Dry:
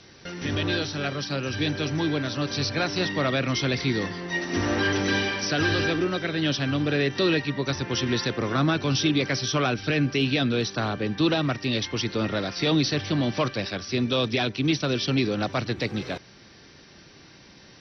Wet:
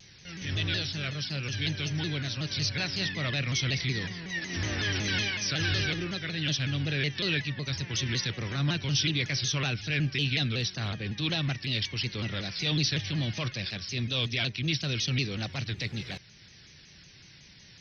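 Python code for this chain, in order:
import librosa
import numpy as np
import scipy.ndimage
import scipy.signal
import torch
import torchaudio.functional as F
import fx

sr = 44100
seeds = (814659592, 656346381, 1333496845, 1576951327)

y = fx.band_shelf(x, sr, hz=570.0, db=-12.0, octaves=3.0)
y = fx.transient(y, sr, attack_db=-6, sustain_db=-2)
y = fx.vibrato_shape(y, sr, shape='saw_down', rate_hz=5.4, depth_cents=160.0)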